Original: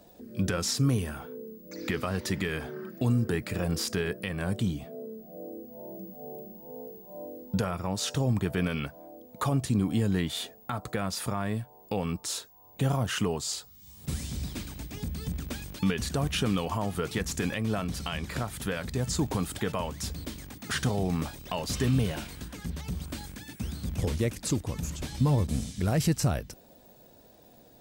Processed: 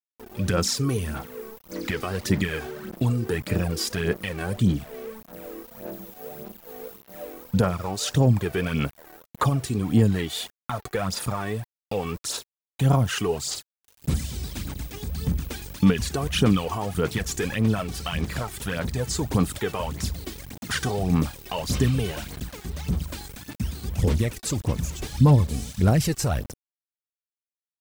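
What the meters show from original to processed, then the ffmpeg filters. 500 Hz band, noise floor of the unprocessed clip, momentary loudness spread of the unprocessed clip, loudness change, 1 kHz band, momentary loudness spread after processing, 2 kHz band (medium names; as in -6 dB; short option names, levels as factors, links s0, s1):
+5.0 dB, -55 dBFS, 15 LU, +5.0 dB, +4.5 dB, 17 LU, +4.0 dB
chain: -af "aeval=exprs='val(0)*gte(abs(val(0)),0.0075)':c=same,aphaser=in_gain=1:out_gain=1:delay=2.7:decay=0.56:speed=1.7:type=sinusoidal,volume=1.26"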